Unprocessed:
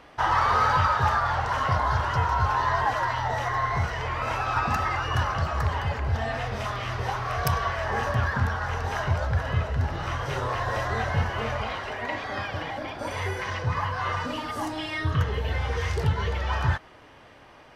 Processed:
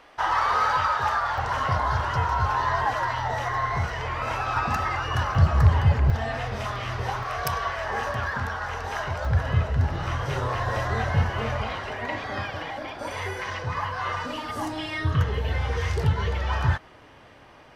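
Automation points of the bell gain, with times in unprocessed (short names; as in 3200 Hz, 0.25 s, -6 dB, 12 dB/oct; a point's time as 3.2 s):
bell 110 Hz 2.6 oct
-11.5 dB
from 1.38 s -0.5 dB
from 5.35 s +11 dB
from 6.1 s +0.5 dB
from 7.23 s -7.5 dB
from 9.25 s +3.5 dB
from 12.5 s -4.5 dB
from 14.49 s +2 dB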